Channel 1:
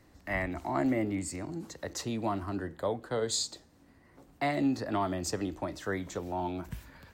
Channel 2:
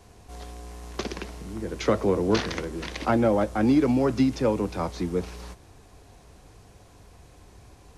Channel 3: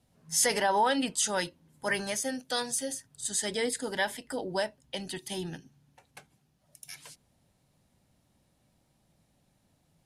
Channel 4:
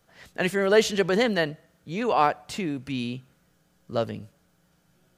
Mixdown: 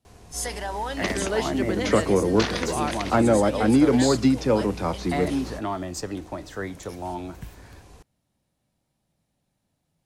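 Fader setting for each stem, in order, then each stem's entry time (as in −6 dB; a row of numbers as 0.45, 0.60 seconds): +1.5, +2.5, −5.5, −7.5 decibels; 0.70, 0.05, 0.00, 0.60 seconds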